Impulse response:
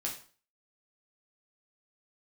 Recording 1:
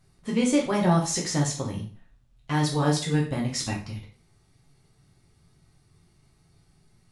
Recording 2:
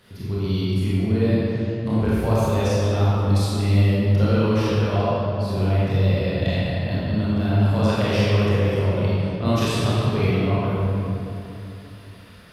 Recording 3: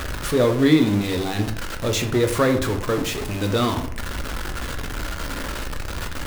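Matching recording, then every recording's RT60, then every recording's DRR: 1; 0.40 s, 3.0 s, 0.60 s; -2.5 dB, -10.0 dB, 5.0 dB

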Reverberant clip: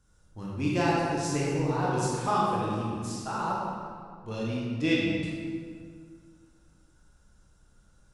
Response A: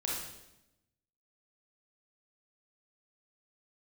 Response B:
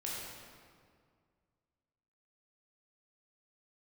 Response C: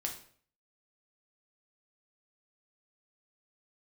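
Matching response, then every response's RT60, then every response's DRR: B; 0.90 s, 2.0 s, 0.50 s; -4.5 dB, -6.0 dB, 1.0 dB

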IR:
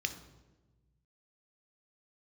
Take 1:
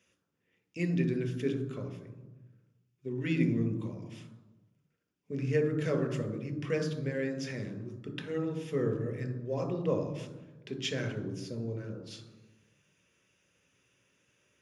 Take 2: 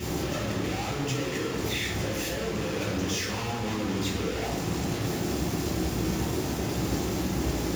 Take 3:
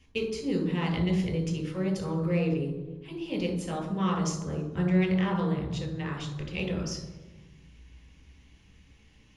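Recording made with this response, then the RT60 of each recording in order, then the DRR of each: 1; 1.2 s, 1.2 s, 1.2 s; 8.0 dB, -2.5 dB, 2.5 dB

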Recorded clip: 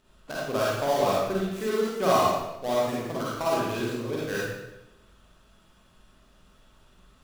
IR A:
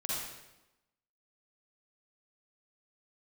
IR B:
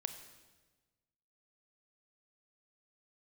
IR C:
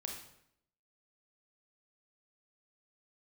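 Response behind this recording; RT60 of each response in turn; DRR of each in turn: A; 1.0 s, 1.3 s, 0.75 s; -7.0 dB, 8.0 dB, 0.5 dB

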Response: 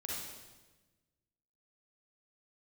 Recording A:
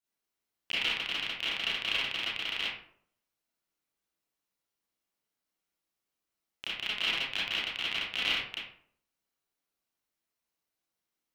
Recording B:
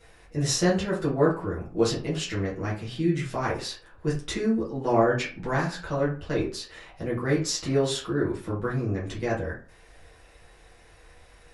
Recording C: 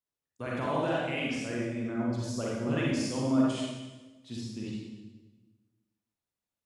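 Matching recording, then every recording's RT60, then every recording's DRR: C; 0.60 s, 0.45 s, 1.2 s; -8.5 dB, -8.0 dB, -5.0 dB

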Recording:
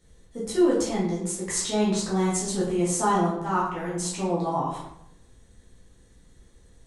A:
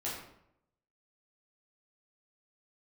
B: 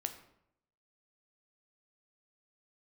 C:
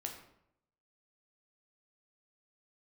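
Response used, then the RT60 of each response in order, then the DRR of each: A; 0.75 s, 0.75 s, 0.75 s; -7.5 dB, 6.5 dB, 1.5 dB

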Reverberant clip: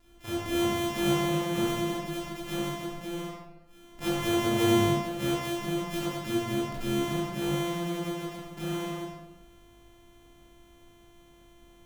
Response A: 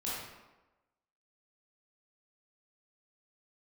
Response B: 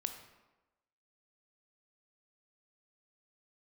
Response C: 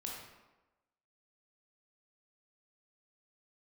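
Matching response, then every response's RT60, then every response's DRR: A; 1.1 s, 1.1 s, 1.1 s; -8.0 dB, 6.5 dB, -2.5 dB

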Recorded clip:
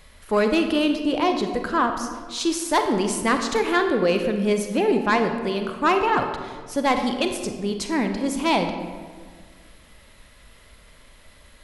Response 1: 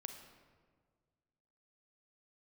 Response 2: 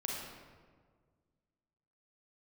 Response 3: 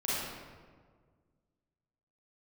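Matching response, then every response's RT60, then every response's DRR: 1; 1.7 s, 1.7 s, 1.7 s; 5.5 dB, -2.5 dB, -9.5 dB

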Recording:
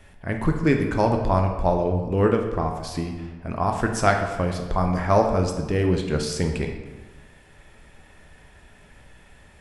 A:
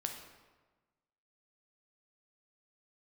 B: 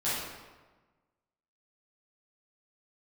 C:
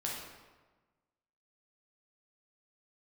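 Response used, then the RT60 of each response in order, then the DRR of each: A; 1.3 s, 1.3 s, 1.3 s; 3.0 dB, -12.5 dB, -4.0 dB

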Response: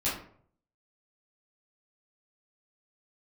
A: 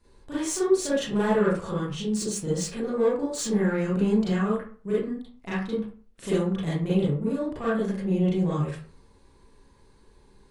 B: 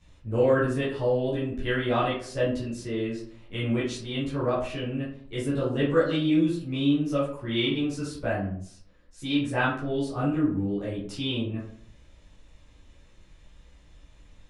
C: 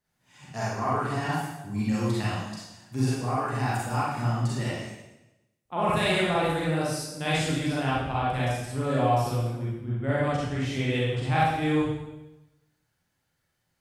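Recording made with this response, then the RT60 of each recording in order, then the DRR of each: B; 0.40 s, 0.55 s, 1.0 s; -9.5 dB, -9.5 dB, -8.0 dB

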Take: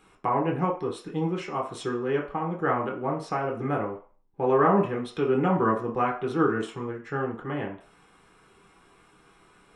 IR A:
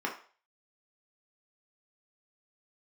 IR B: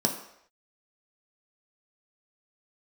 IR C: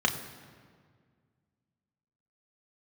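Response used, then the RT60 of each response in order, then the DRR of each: A; 0.40 s, no single decay rate, 1.9 s; -1.5 dB, 1.5 dB, 2.0 dB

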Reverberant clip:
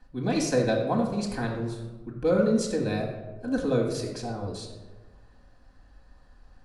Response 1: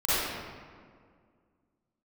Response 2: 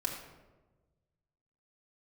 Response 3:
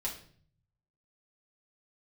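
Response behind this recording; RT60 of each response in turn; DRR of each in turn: 2; 2.0 s, 1.2 s, 0.50 s; -14.0 dB, -1.0 dB, -4.5 dB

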